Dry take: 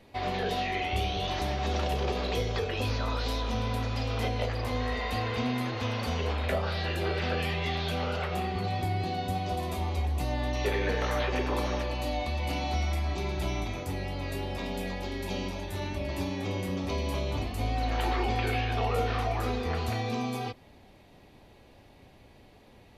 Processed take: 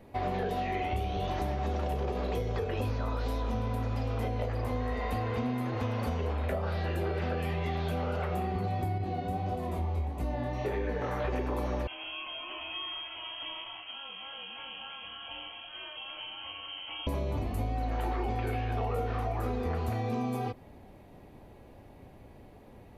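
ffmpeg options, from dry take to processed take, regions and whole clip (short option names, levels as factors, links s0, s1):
-filter_complex "[0:a]asettb=1/sr,asplit=3[s0][s1][s2];[s0]atrim=end=8.984[s3];[s1]atrim=start=8.98:end=11.25,asetpts=PTS-STARTPTS,afade=t=in:d=0.004:c=qsin,afade=t=out:st=2.266:d=0.004:c=qsin,highshelf=f=7300:g=-8,flanger=delay=19.5:depth=6.4:speed=1.6[s4];[s2]atrim=start=11.246[s5];[s3][s4]acrossfade=d=0.004:c1=hsin:c2=qsin[s6];[s6][s5]acrossfade=d=0.004:c1=qsin:c2=hsin,asettb=1/sr,asplit=3[s7][s8][s9];[s7]atrim=end=11.874[s10];[s8]atrim=start=11.87:end=17.07,asetpts=PTS-STARTPTS,afade=t=in:d=0.004:c=qsin,afade=t=out:st=5.196:d=0.004:c=qsin,flanger=delay=6.3:depth=9.1:regen=-70:speed=1.6:shape=sinusoidal,lowpass=f=2800:t=q:w=0.5098,lowpass=f=2800:t=q:w=0.6013,lowpass=f=2800:t=q:w=0.9,lowpass=f=2800:t=q:w=2.563,afreqshift=-3300[s11];[s9]atrim=start=17.066[s12];[s10][s11]acrossfade=d=0.004:c1=hsin:c2=qsin[s13];[s13][s12]acrossfade=d=0.004:c1=qsin:c2=hsin,equalizer=f=4300:w=0.54:g=-12.5,acompressor=threshold=0.0251:ratio=6,volume=1.58"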